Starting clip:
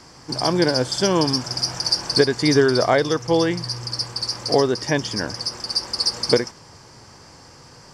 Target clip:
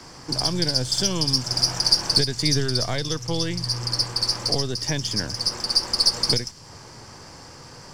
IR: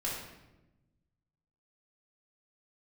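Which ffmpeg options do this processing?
-filter_complex "[0:a]aeval=exprs='if(lt(val(0),0),0.708*val(0),val(0))':c=same,acrossover=split=160|3000[s0][s1][s2];[s1]acompressor=threshold=0.0178:ratio=4[s3];[s0][s3][s2]amix=inputs=3:normalize=0,volume=1.58"

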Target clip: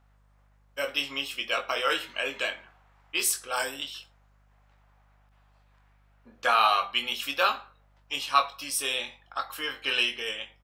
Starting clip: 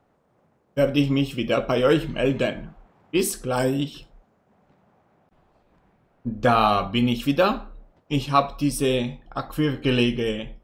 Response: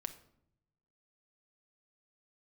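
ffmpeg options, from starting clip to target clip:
-filter_complex "[0:a]highpass=1200,aeval=exprs='val(0)+0.000562*(sin(2*PI*50*n/s)+sin(2*PI*2*50*n/s)/2+sin(2*PI*3*50*n/s)/3+sin(2*PI*4*50*n/s)/4+sin(2*PI*5*50*n/s)/5)':c=same,asplit=2[s0][s1];[s1]adelay=22,volume=0.447[s2];[s0][s2]amix=inputs=2:normalize=0,volume=1.19"

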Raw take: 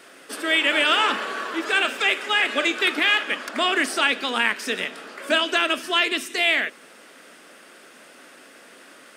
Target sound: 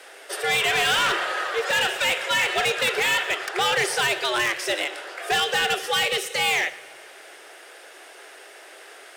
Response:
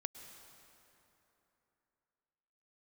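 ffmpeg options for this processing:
-filter_complex "[0:a]afreqshift=130,volume=11.2,asoftclip=hard,volume=0.0891,asplit=2[s0][s1];[1:a]atrim=start_sample=2205,asetrate=57330,aresample=44100,adelay=117[s2];[s1][s2]afir=irnorm=-1:irlink=0,volume=0.237[s3];[s0][s3]amix=inputs=2:normalize=0,volume=1.33"

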